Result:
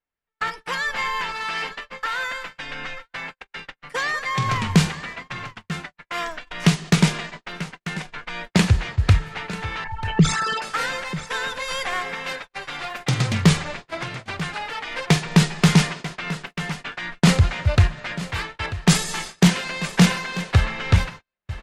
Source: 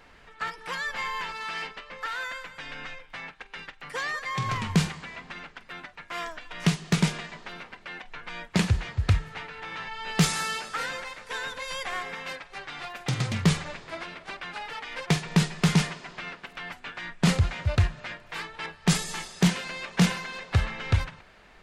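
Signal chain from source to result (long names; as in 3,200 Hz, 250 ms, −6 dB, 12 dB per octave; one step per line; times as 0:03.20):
0:09.84–0:10.62: spectral envelope exaggerated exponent 3
single-tap delay 940 ms −15 dB
noise gate −40 dBFS, range −44 dB
level +6.5 dB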